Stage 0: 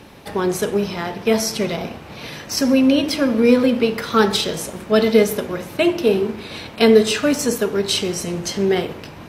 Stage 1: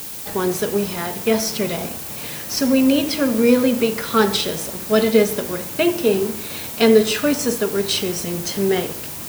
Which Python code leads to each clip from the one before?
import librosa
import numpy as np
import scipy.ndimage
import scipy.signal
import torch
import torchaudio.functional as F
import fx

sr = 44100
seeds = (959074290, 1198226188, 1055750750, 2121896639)

y = fx.dmg_noise_colour(x, sr, seeds[0], colour='blue', level_db=-31.0)
y = F.gain(torch.from_numpy(y), -1.0).numpy()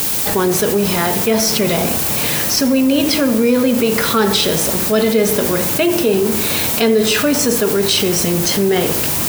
y = fx.env_flatten(x, sr, amount_pct=70)
y = F.gain(torch.from_numpy(y), -2.5).numpy()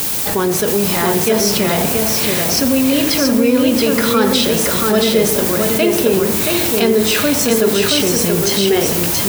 y = x + 10.0 ** (-3.5 / 20.0) * np.pad(x, (int(677 * sr / 1000.0), 0))[:len(x)]
y = F.gain(torch.from_numpy(y), -1.0).numpy()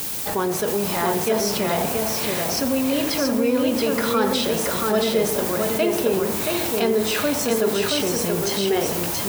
y = fx.dynamic_eq(x, sr, hz=810.0, q=0.83, threshold_db=-30.0, ratio=4.0, max_db=6)
y = F.gain(torch.from_numpy(y), -9.0).numpy()